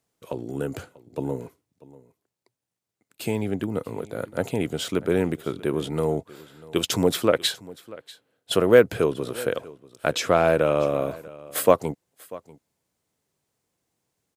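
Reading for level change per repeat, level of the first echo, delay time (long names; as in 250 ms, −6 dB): repeats not evenly spaced, −20.5 dB, 641 ms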